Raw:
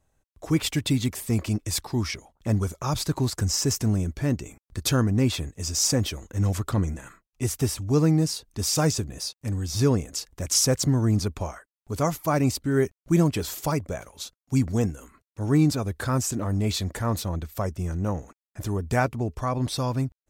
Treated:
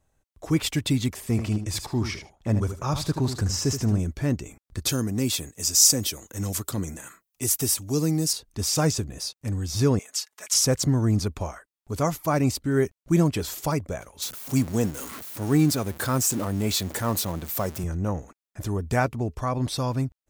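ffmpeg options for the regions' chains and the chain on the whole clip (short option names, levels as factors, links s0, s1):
-filter_complex "[0:a]asettb=1/sr,asplit=3[s0][s1][s2];[s0]atrim=end=1.144[s3];[s1]atrim=start=1.14:end=3.99,asetpts=PTS-STARTPTS,afade=t=in:d=0.004:c=qsin,afade=t=out:st=2.846:d=0.004:c=qsin,highshelf=f=6000:g=-6.5,aecho=1:1:76|152:0.355|0.0568,atrim=end_sample=125685[s4];[s2]atrim=start=3.986[s5];[s3][s4]acrossfade=d=0.004:c1=hsin:c2=qsin[s6];[s6][s5]acrossfade=d=0.004:c1=qsin:c2=hsin,asettb=1/sr,asplit=3[s7][s8][s9];[s7]atrim=end=4.894[s10];[s8]atrim=start=4.89:end=8.33,asetpts=PTS-STARTPTS,afade=t=in:d=0.004:c=qsin,afade=t=out:st=3.436:d=0.004:c=qsin,aemphasis=mode=production:type=50kf,acrossover=split=460|3000[s11][s12][s13];[s12]acompressor=threshold=0.00794:ratio=2:attack=3.2:release=140:knee=2.83:detection=peak[s14];[s11][s14][s13]amix=inputs=3:normalize=0,highpass=f=210:p=1[s15];[s9]atrim=start=8.326[s16];[s10][s15]acrossfade=d=0.004:c1=hsin:c2=qsin[s17];[s17][s16]acrossfade=d=0.004:c1=qsin:c2=hsin,asettb=1/sr,asplit=3[s18][s19][s20];[s18]atrim=end=9.994[s21];[s19]atrim=start=9.99:end=10.54,asetpts=PTS-STARTPTS,afade=t=in:d=0.004:c=qsin,afade=t=out:st=0.546:d=0.004:c=qsin,highpass=1100,aecho=1:1:4.7:0.88,atrim=end_sample=24255[s22];[s20]atrim=start=10.536[s23];[s21][s22]acrossfade=d=0.004:c1=hsin:c2=qsin[s24];[s24][s23]acrossfade=d=0.004:c1=qsin:c2=hsin,asettb=1/sr,asplit=3[s25][s26][s27];[s25]atrim=end=14.224[s28];[s26]atrim=start=14.22:end=17.84,asetpts=PTS-STARTPTS,afade=t=in:d=0.004:c=qsin,afade=t=out:st=3.616:d=0.004:c=qsin,aeval=exprs='val(0)+0.5*0.02*sgn(val(0))':c=same,highpass=120,highshelf=f=9400:g=10.5[s29];[s27]atrim=start=17.836[s30];[s28][s29]acrossfade=d=0.004:c1=hsin:c2=qsin[s31];[s31][s30]acrossfade=d=0.004:c1=qsin:c2=hsin"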